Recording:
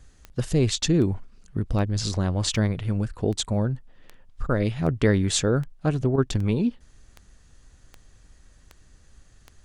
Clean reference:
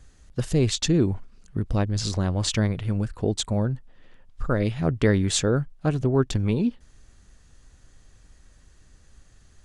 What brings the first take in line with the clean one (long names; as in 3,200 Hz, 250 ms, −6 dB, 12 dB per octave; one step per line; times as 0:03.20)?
click removal
repair the gap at 0:04.47/0:06.16, 17 ms